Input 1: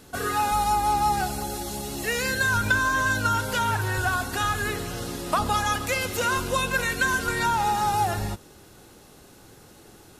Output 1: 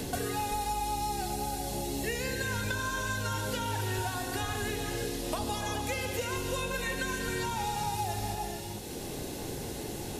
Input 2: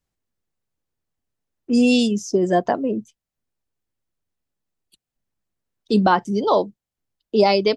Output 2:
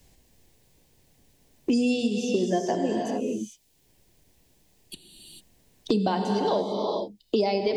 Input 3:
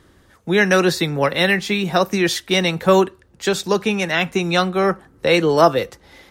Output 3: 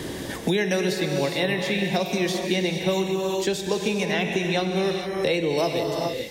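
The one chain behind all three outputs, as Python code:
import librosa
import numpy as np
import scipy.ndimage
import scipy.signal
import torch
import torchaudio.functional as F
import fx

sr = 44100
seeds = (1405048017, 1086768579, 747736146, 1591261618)

y = fx.peak_eq(x, sr, hz=1300.0, db=-14.0, octaves=0.55)
y = fx.rev_gated(y, sr, seeds[0], gate_ms=470, shape='flat', drr_db=3.5)
y = fx.band_squash(y, sr, depth_pct=100)
y = y * librosa.db_to_amplitude(-7.5)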